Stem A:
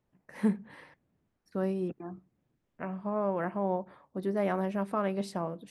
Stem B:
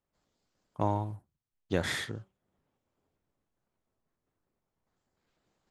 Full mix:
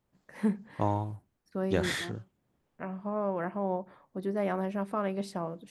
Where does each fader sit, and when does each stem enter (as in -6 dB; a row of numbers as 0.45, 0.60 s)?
-1.0, +0.5 dB; 0.00, 0.00 s